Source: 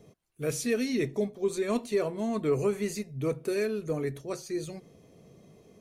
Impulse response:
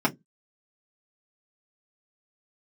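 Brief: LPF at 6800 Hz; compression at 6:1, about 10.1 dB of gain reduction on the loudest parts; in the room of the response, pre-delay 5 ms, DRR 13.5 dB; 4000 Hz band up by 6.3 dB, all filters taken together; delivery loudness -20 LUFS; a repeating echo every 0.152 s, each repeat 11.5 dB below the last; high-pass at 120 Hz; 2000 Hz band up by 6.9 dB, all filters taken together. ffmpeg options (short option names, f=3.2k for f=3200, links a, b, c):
-filter_complex "[0:a]highpass=120,lowpass=6.8k,equalizer=f=2k:t=o:g=6.5,equalizer=f=4k:t=o:g=6.5,acompressor=threshold=-33dB:ratio=6,aecho=1:1:152|304|456:0.266|0.0718|0.0194,asplit=2[a][b];[1:a]atrim=start_sample=2205,adelay=5[c];[b][c]afir=irnorm=-1:irlink=0,volume=-27dB[d];[a][d]amix=inputs=2:normalize=0,volume=16.5dB"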